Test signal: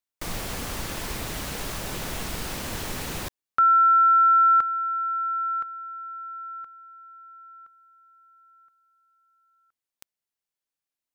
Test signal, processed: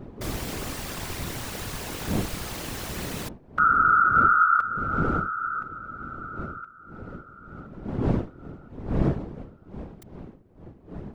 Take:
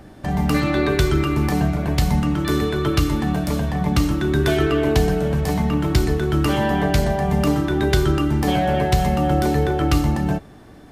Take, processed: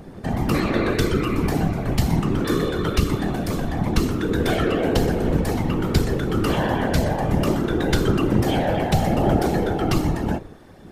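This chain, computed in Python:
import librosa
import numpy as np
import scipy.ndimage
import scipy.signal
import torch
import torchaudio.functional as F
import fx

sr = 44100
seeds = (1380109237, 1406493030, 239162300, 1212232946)

y = fx.dmg_wind(x, sr, seeds[0], corner_hz=260.0, level_db=-31.0)
y = fx.whisperise(y, sr, seeds[1])
y = y * 10.0 ** (-2.0 / 20.0)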